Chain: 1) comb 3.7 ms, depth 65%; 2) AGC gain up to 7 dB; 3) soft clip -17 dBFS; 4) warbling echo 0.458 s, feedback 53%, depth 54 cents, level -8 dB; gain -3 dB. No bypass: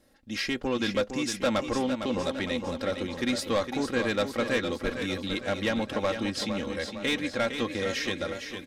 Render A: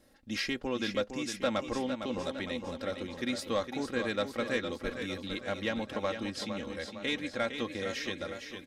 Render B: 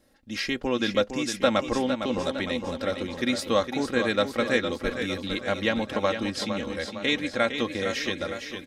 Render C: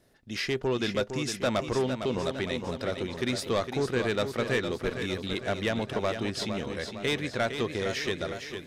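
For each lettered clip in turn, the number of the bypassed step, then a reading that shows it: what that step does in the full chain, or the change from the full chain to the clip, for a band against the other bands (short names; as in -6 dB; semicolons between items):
2, loudness change -5.0 LU; 3, distortion -12 dB; 1, 125 Hz band +5.0 dB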